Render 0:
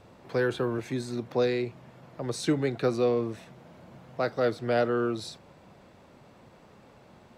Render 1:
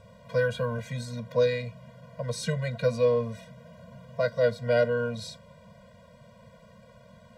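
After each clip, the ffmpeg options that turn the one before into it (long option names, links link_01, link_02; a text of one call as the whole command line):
ffmpeg -i in.wav -af "afftfilt=real='re*eq(mod(floor(b*sr/1024/230),2),0)':imag='im*eq(mod(floor(b*sr/1024/230),2),0)':win_size=1024:overlap=0.75,volume=3.5dB" out.wav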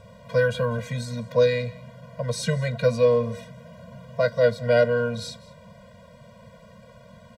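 ffmpeg -i in.wav -af "aecho=1:1:195:0.0891,volume=4.5dB" out.wav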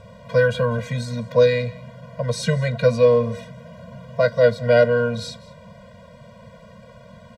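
ffmpeg -i in.wav -af "highshelf=frequency=8400:gain=-7.5,volume=4dB" out.wav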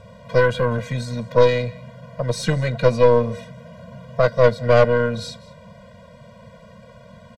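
ffmpeg -i in.wav -af "aresample=32000,aresample=44100,aeval=exprs='0.708*(cos(1*acos(clip(val(0)/0.708,-1,1)))-cos(1*PI/2))+0.126*(cos(4*acos(clip(val(0)/0.708,-1,1)))-cos(4*PI/2))':channel_layout=same" out.wav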